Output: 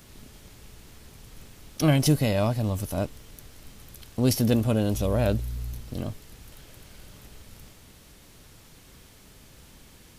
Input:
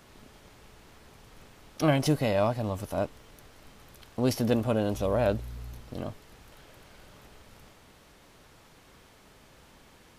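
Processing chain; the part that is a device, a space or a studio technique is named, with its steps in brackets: smiley-face EQ (low shelf 160 Hz +4 dB; bell 900 Hz -7 dB 2.5 oct; high shelf 7100 Hz +7 dB); gain +4.5 dB

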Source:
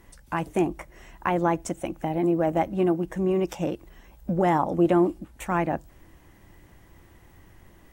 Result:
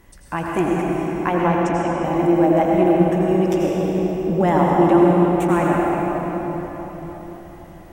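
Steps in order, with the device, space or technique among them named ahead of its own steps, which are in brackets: 1.34–2.04 air absorption 86 m; cathedral (reverb RT60 4.5 s, pre-delay 79 ms, DRR -3.5 dB); gain +2.5 dB

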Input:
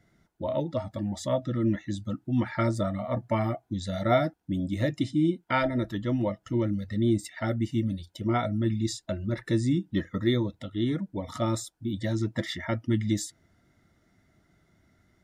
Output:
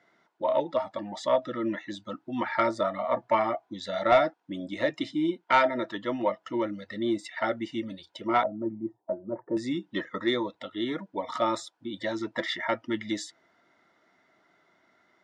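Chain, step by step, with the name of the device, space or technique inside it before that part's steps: 8.43–9.57 elliptic band-pass 110–850 Hz, stop band 60 dB; intercom (BPF 450–4100 Hz; bell 1000 Hz +6 dB 0.44 oct; soft clip -16 dBFS, distortion -20 dB); gain +5 dB

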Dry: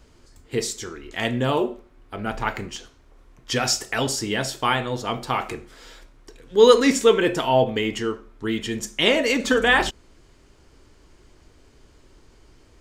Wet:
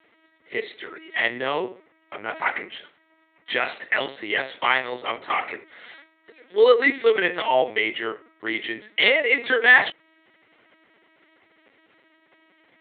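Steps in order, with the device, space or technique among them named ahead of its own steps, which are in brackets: talking toy (LPC vocoder at 8 kHz pitch kept; HPF 380 Hz 12 dB/oct; bell 2000 Hz +11.5 dB 0.43 oct); gain -1 dB

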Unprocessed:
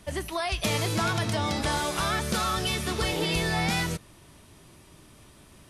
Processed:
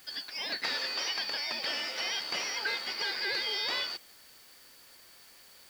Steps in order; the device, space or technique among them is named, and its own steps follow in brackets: split-band scrambled radio (four-band scrambler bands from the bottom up 4321; BPF 300–3000 Hz; white noise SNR 22 dB); 0.74–1.17 HPF 270 Hz 12 dB/oct

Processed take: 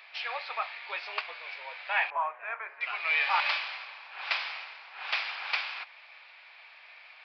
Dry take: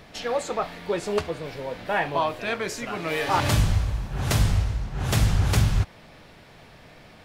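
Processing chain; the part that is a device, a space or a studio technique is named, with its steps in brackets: 2.1–2.81 LPF 1600 Hz 24 dB/oct; musical greeting card (downsampling 11025 Hz; HPF 850 Hz 24 dB/oct; bell 2400 Hz +11 dB 0.37 oct); gain -3 dB

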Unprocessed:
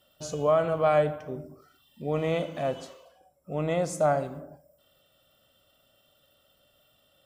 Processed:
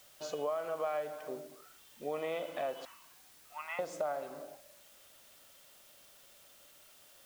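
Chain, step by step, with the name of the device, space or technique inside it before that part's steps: 2.85–3.79 elliptic band-pass 900–2800 Hz, stop band 40 dB; baby monitor (BPF 450–4000 Hz; compressor, threshold -33 dBFS, peak gain reduction 13 dB; white noise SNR 19 dB)

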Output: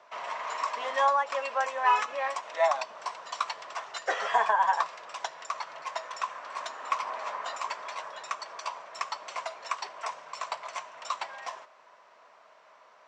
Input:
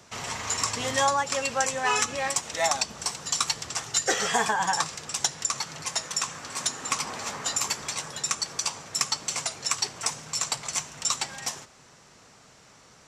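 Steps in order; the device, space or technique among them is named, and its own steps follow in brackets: 0.54–1.83 HPF 190 Hz 12 dB/oct; tin-can telephone (BPF 660–2500 Hz; small resonant body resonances 630/1000 Hz, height 11 dB, ringing for 25 ms); gain -2.5 dB

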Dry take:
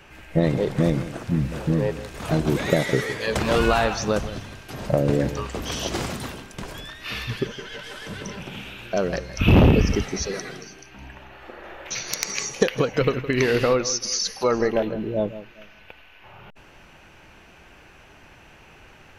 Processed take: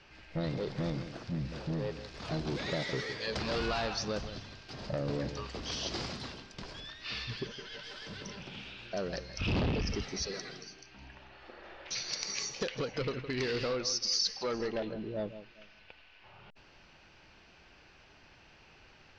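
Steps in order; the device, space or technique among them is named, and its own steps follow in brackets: overdriven synthesiser ladder filter (soft clip -17 dBFS, distortion -11 dB; ladder low-pass 5400 Hz, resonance 60%)

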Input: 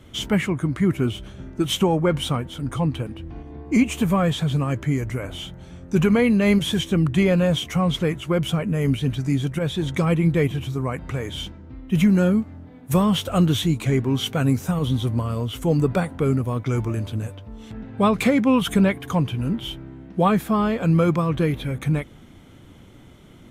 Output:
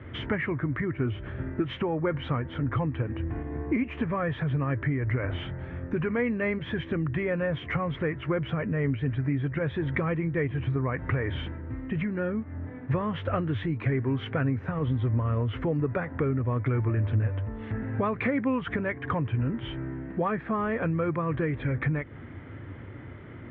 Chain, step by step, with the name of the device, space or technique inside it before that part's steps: bass amplifier (compressor 5:1, threshold -29 dBFS, peak gain reduction 14.5 dB; speaker cabinet 65–2200 Hz, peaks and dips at 99 Hz +7 dB, 190 Hz -9 dB, 760 Hz -4 dB, 1800 Hz +8 dB); gain +5 dB

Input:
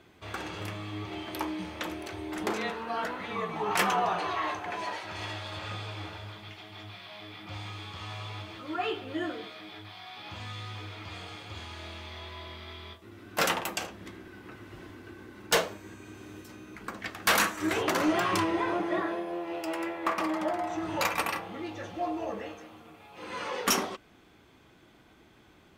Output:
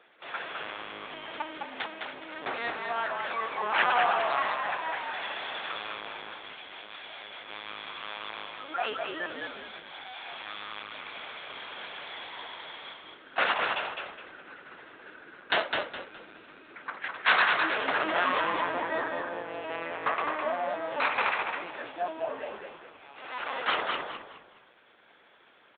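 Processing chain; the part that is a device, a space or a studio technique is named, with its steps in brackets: talking toy (LPC vocoder at 8 kHz pitch kept; HPF 550 Hz 12 dB/oct; bell 1600 Hz +4.5 dB 0.3 oct); frequency-shifting echo 0.208 s, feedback 32%, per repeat -53 Hz, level -4 dB; gain +2 dB

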